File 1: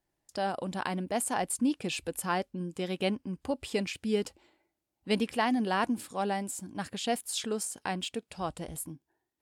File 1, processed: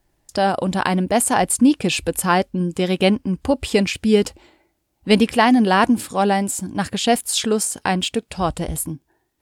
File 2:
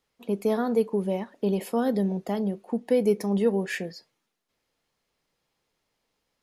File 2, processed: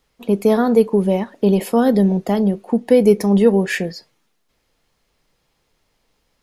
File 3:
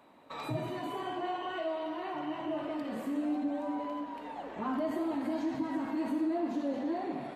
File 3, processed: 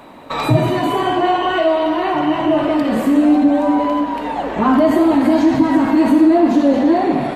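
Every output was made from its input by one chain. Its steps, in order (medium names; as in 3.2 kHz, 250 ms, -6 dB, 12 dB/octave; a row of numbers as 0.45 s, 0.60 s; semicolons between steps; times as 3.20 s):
bass shelf 78 Hz +11.5 dB; peak normalisation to -2 dBFS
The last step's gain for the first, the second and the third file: +13.0 dB, +9.5 dB, +19.5 dB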